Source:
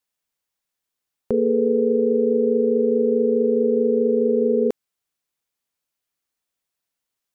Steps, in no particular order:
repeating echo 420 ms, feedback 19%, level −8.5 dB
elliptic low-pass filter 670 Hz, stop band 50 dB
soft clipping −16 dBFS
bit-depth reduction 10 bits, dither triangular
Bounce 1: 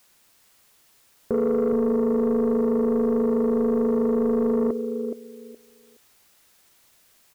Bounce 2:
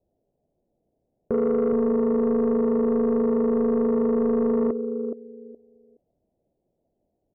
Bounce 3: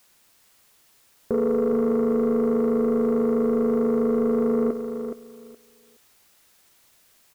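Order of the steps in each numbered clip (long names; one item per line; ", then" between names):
elliptic low-pass filter, then bit-depth reduction, then repeating echo, then soft clipping
repeating echo, then bit-depth reduction, then elliptic low-pass filter, then soft clipping
elliptic low-pass filter, then soft clipping, then bit-depth reduction, then repeating echo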